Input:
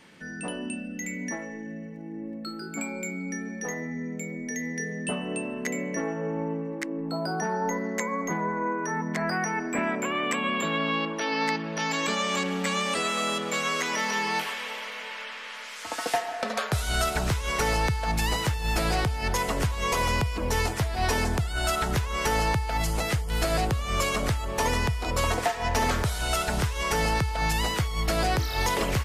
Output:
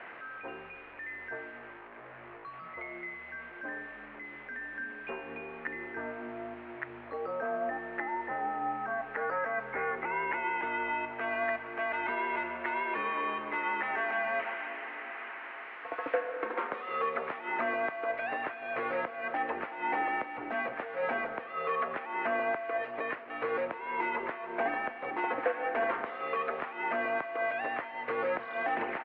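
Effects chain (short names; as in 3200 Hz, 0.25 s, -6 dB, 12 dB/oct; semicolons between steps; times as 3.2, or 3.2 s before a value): delta modulation 64 kbps, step -33.5 dBFS; on a send: echo 0.301 s -16.5 dB; on the sum: mistuned SSB -200 Hz 590–2500 Hz; gain -2.5 dB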